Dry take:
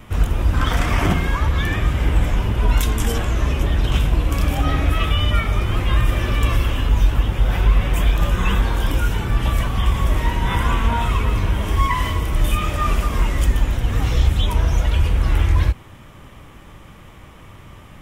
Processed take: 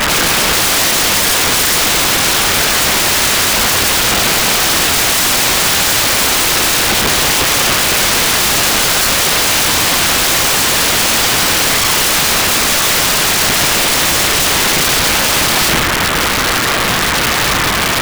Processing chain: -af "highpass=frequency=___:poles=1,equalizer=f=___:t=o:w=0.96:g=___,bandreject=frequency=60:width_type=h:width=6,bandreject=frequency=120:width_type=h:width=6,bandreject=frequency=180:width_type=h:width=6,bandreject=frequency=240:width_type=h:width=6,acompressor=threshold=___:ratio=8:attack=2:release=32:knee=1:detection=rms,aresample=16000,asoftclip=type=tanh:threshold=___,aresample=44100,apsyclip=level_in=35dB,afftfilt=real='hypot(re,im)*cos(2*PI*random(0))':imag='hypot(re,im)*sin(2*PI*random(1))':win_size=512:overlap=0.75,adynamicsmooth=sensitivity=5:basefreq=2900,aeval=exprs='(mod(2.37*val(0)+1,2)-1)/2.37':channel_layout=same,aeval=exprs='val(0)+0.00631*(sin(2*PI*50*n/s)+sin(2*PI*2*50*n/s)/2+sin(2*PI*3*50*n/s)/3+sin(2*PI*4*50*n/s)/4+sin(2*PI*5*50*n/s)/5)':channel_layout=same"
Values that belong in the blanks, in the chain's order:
100, 1600, 13, -22dB, -29.5dB